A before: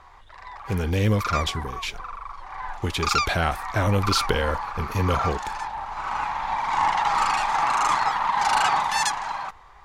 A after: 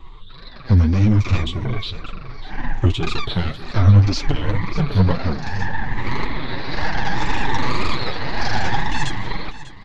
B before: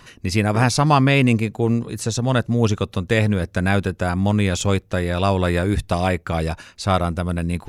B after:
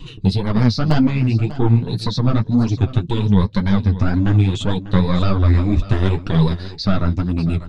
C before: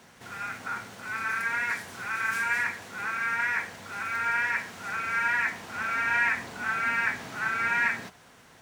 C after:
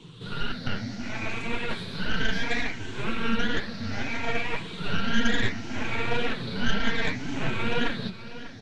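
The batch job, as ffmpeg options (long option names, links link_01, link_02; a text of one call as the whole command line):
ffmpeg -i in.wav -filter_complex "[0:a]afftfilt=real='re*pow(10,13/40*sin(2*PI*(0.67*log(max(b,1)*sr/1024/100)/log(2)-(0.66)*(pts-256)/sr)))':imag='im*pow(10,13/40*sin(2*PI*(0.67*log(max(b,1)*sr/1024/100)/log(2)-(0.66)*(pts-256)/sr)))':win_size=1024:overlap=0.75,lowpass=frequency=4000:width_type=q:width=3.6,adynamicequalizer=threshold=0.0158:dfrequency=1400:dqfactor=3.1:tfrequency=1400:tqfactor=3.1:attack=5:release=100:ratio=0.375:range=2:mode=cutabove:tftype=bell,asplit=2[link_01][link_02];[link_02]acompressor=threshold=-29dB:ratio=12,volume=2dB[link_03];[link_01][link_03]amix=inputs=2:normalize=0,alimiter=limit=-8dB:level=0:latency=1:release=372,acrossover=split=360|1700[link_04][link_05][link_06];[link_04]acontrast=80[link_07];[link_05]aeval=exprs='0.355*(cos(1*acos(clip(val(0)/0.355,-1,1)))-cos(1*PI/2))+0.0891*(cos(3*acos(clip(val(0)/0.355,-1,1)))-cos(3*PI/2))+0.00316*(cos(4*acos(clip(val(0)/0.355,-1,1)))-cos(4*PI/2))+0.158*(cos(6*acos(clip(val(0)/0.355,-1,1)))-cos(6*PI/2))':channel_layout=same[link_08];[link_07][link_08][link_06]amix=inputs=3:normalize=0,flanger=delay=6.2:depth=3:regen=-43:speed=0.43:shape=triangular,equalizer=frequency=2700:width=0.56:gain=-9,flanger=delay=2.7:depth=8.8:regen=15:speed=1.9:shape=triangular,aecho=1:1:595:0.178,volume=6dB" out.wav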